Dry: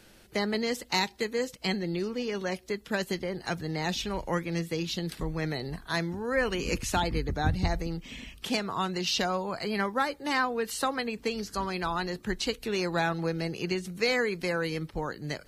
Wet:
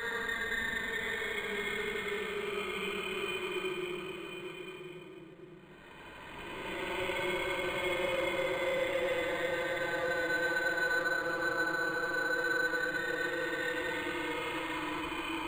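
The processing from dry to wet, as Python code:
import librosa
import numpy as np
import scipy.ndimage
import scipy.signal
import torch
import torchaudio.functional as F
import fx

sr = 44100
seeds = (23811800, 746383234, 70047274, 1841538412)

p1 = fx.cvsd(x, sr, bps=64000)
p2 = fx.highpass(p1, sr, hz=1200.0, slope=6)
p3 = p2 + 0.72 * np.pad(p2, (int(3.3 * sr / 1000.0), 0))[:len(p2)]
p4 = fx.paulstretch(p3, sr, seeds[0], factor=33.0, window_s=0.05, from_s=14.23)
p5 = 10.0 ** (-31.0 / 20.0) * np.tanh(p4 / 10.0 ** (-31.0 / 20.0))
p6 = p5 + fx.echo_single(p5, sr, ms=1029, db=-8.0, dry=0)
p7 = fx.room_shoebox(p6, sr, seeds[1], volume_m3=2500.0, walls='furnished', distance_m=4.9)
p8 = np.interp(np.arange(len(p7)), np.arange(len(p7))[::8], p7[::8])
y = F.gain(torch.from_numpy(p8), -1.5).numpy()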